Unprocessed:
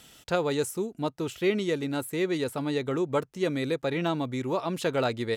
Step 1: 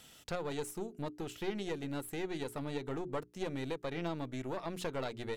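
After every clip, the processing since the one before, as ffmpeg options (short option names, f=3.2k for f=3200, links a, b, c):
-af "acompressor=threshold=-35dB:ratio=2,aeval=exprs='(tanh(22.4*val(0)+0.75)-tanh(0.75))/22.4':c=same,bandreject=f=60:t=h:w=6,bandreject=f=120:t=h:w=6,bandreject=f=180:t=h:w=6,bandreject=f=240:t=h:w=6,bandreject=f=300:t=h:w=6,bandreject=f=360:t=h:w=6,bandreject=f=420:t=h:w=6"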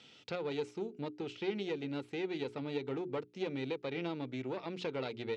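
-af "highpass=f=110:w=0.5412,highpass=f=110:w=1.3066,equalizer=f=160:t=q:w=4:g=-5,equalizer=f=430:t=q:w=4:g=3,equalizer=f=660:t=q:w=4:g=-6,equalizer=f=1.1k:t=q:w=4:g=-6,equalizer=f=1.7k:t=q:w=4:g=-6,equalizer=f=2.4k:t=q:w=4:g=4,lowpass=f=5k:w=0.5412,lowpass=f=5k:w=1.3066,volume=1dB"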